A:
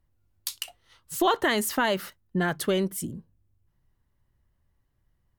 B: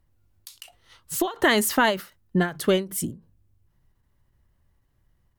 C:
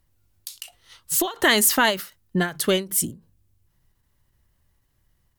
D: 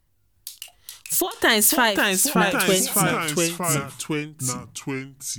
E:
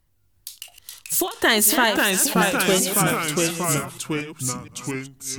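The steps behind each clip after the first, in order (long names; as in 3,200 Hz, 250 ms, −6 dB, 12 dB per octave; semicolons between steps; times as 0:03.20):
every ending faded ahead of time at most 170 dB per second; level +5 dB
high-shelf EQ 2,400 Hz +9.5 dB; level −1 dB
delay with pitch and tempo change per echo 361 ms, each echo −2 semitones, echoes 3
delay that plays each chunk backwards 234 ms, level −11 dB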